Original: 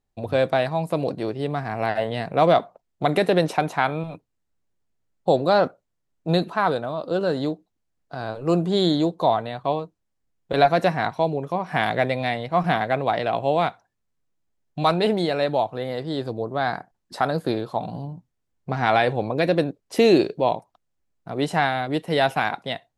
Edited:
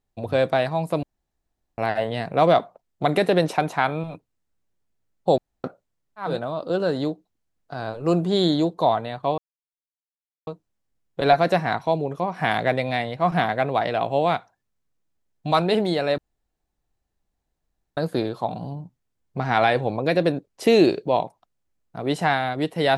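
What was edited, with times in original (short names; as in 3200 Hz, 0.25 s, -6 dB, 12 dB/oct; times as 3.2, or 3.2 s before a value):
1.03–1.78 room tone
5.38–5.64 room tone
6.28–6.69 cut, crossfade 0.24 s
9.79 insert silence 1.09 s
15.5–17.29 room tone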